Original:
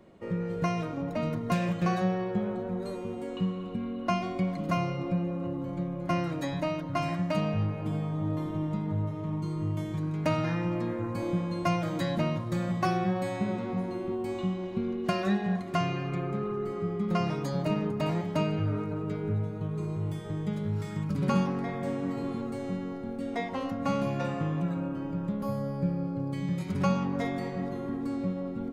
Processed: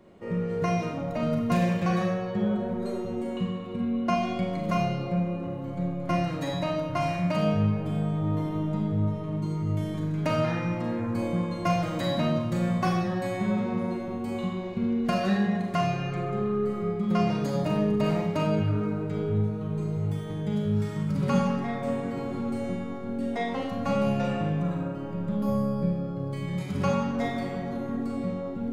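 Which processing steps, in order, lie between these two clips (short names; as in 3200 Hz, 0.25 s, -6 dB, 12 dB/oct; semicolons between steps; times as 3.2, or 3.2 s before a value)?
Schroeder reverb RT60 0.7 s, combs from 30 ms, DRR 1 dB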